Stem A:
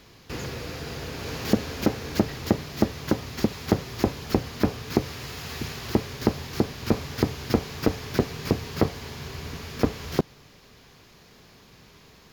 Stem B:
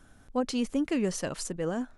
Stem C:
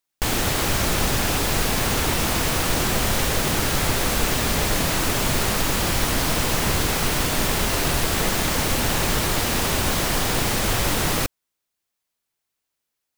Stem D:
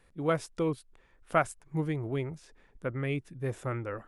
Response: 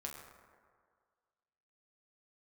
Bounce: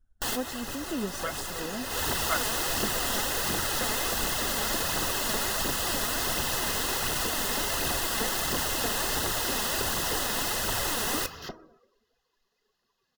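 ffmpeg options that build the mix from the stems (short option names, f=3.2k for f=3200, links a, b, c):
-filter_complex "[0:a]equalizer=f=94:w=0.31:g=-15,bandreject=f=317.8:t=h:w=4,bandreject=f=635.6:t=h:w=4,bandreject=f=953.4:t=h:w=4,bandreject=f=1.2712k:t=h:w=4,bandreject=f=1.589k:t=h:w=4,bandreject=f=1.9068k:t=h:w=4,bandreject=f=2.2246k:t=h:w=4,bandreject=f=2.5424k:t=h:w=4,bandreject=f=2.8602k:t=h:w=4,bandreject=f=3.178k:t=h:w=4,bandreject=f=3.4958k:t=h:w=4,bandreject=f=3.8136k:t=h:w=4,bandreject=f=4.1314k:t=h:w=4,bandreject=f=4.4492k:t=h:w=4,bandreject=f=4.767k:t=h:w=4,bandreject=f=5.0848k:t=h:w=4,bandreject=f=5.4026k:t=h:w=4,bandreject=f=5.7204k:t=h:w=4,bandreject=f=6.0382k:t=h:w=4,bandreject=f=6.356k:t=h:w=4,bandreject=f=6.6738k:t=h:w=4,bandreject=f=6.9916k:t=h:w=4,bandreject=f=7.3094k:t=h:w=4,bandreject=f=7.6272k:t=h:w=4,bandreject=f=7.945k:t=h:w=4,bandreject=f=8.2628k:t=h:w=4,bandreject=f=8.5806k:t=h:w=4,bandreject=f=8.8984k:t=h:w=4,bandreject=f=9.2162k:t=h:w=4,asoftclip=type=tanh:threshold=-27dB,adelay=1300,volume=-5.5dB,asplit=2[a][b];[b]volume=-4.5dB[c];[1:a]volume=-7.5dB,asplit=2[d][e];[2:a]lowshelf=f=320:g=-10.5,acrusher=bits=3:mix=0:aa=0.5,volume=-8dB,asplit=2[f][g];[g]volume=-7dB[h];[3:a]highpass=1.3k,adelay=950,volume=1dB[i];[e]apad=whole_len=580992[j];[f][j]sidechaincompress=threshold=-49dB:ratio=8:attack=5.8:release=174[k];[4:a]atrim=start_sample=2205[l];[c][h]amix=inputs=2:normalize=0[m];[m][l]afir=irnorm=-1:irlink=0[n];[a][d][k][i][n]amix=inputs=5:normalize=0,afftdn=nr=21:nf=-50,aphaser=in_gain=1:out_gain=1:delay=4.9:decay=0.38:speed=1.4:type=triangular,asuperstop=centerf=2300:order=20:qfactor=6.4"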